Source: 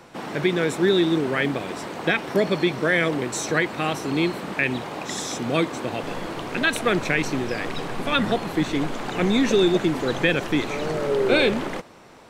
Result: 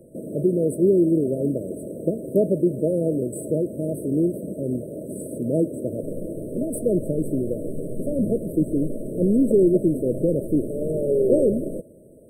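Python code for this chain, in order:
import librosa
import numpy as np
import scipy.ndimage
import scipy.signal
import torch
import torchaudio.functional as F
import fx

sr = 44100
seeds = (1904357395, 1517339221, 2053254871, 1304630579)

y = fx.brickwall_bandstop(x, sr, low_hz=660.0, high_hz=8000.0)
y = y * 10.0 ** (2.0 / 20.0)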